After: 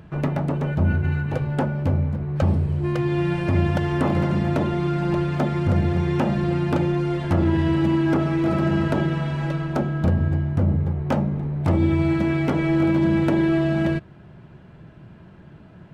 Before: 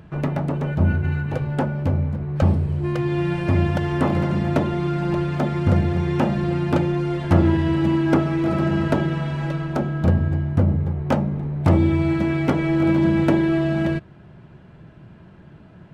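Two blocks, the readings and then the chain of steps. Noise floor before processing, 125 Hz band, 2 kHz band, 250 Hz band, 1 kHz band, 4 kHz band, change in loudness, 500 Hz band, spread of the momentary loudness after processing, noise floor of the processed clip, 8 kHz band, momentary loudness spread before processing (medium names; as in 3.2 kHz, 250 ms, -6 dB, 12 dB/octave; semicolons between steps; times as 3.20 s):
-46 dBFS, -1.0 dB, -0.5 dB, -1.0 dB, -1.0 dB, -0.5 dB, -1.0 dB, -1.0 dB, 5 LU, -46 dBFS, no reading, 6 LU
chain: peak limiter -11 dBFS, peak gain reduction 7 dB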